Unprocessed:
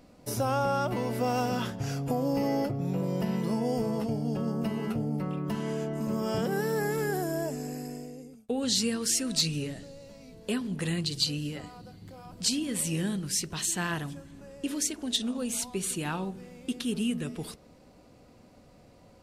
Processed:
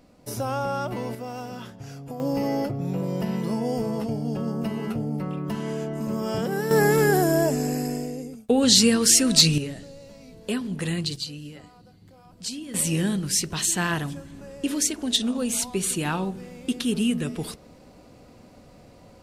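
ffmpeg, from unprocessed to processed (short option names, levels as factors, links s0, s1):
-af "asetnsamples=n=441:p=0,asendcmd='1.15 volume volume -7dB;2.2 volume volume 2.5dB;6.71 volume volume 10.5dB;9.58 volume volume 3dB;11.16 volume volume -5dB;12.74 volume volume 6dB',volume=1"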